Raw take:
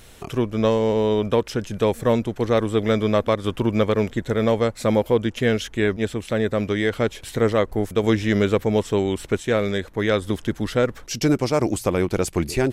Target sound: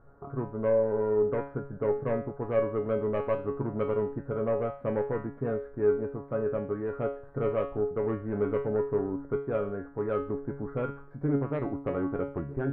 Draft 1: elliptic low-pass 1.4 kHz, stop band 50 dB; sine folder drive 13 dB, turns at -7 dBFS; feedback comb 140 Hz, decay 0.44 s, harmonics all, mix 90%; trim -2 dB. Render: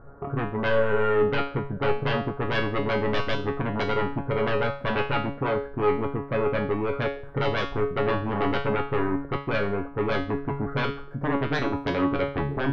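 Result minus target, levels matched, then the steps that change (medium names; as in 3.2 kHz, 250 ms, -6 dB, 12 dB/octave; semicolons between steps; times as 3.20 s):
sine folder: distortion +21 dB
change: sine folder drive 3 dB, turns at -7 dBFS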